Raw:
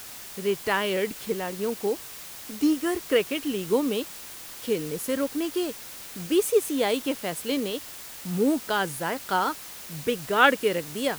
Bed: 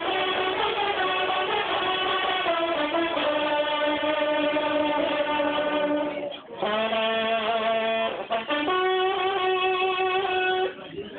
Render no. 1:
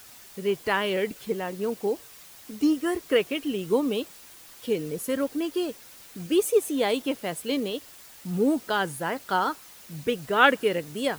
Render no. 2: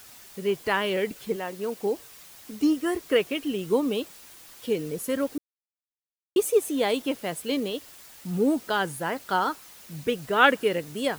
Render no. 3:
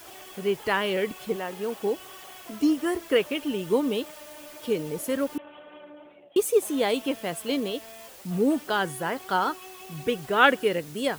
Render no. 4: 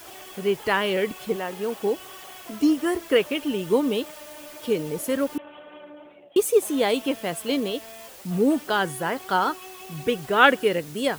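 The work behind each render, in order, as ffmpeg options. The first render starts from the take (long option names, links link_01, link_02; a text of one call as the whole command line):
ffmpeg -i in.wav -af "afftdn=noise_reduction=8:noise_floor=-41" out.wav
ffmpeg -i in.wav -filter_complex "[0:a]asettb=1/sr,asplit=3[link_01][link_02][link_03];[link_01]atrim=end=1.364[link_04];[link_02]atrim=start=1.36:end=1.8,asetpts=PTS-STARTPTS,afade=type=in:duration=0.004:curve=qsin,afade=type=out:start_time=0.436:duration=0.004:curve=qsin,lowshelf=frequency=220:gain=-8.5[link_05];[link_03]atrim=start=1.796[link_06];[link_04][link_05]acrossfade=duration=0.004:curve1=hsin:curve2=qsin[link_07];[link_07][link_06]acrossfade=duration=0.004:curve1=qsin:curve2=hsin,asplit=3[link_08][link_09][link_10];[link_08]atrim=end=5.38,asetpts=PTS-STARTPTS,afade=type=out:start_time=5.376:duration=0.004:curve=hsin[link_11];[link_09]atrim=start=5.38:end=6.36,asetpts=PTS-STARTPTS,volume=0[link_12];[link_10]atrim=start=6.36,asetpts=PTS-STARTPTS,afade=type=in:duration=0.004:curve=hsin[link_13];[link_11][link_12][link_13]concat=n=3:v=0:a=1" out.wav
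ffmpeg -i in.wav -i bed.wav -filter_complex "[1:a]volume=-22dB[link_01];[0:a][link_01]amix=inputs=2:normalize=0" out.wav
ffmpeg -i in.wav -af "volume=2.5dB" out.wav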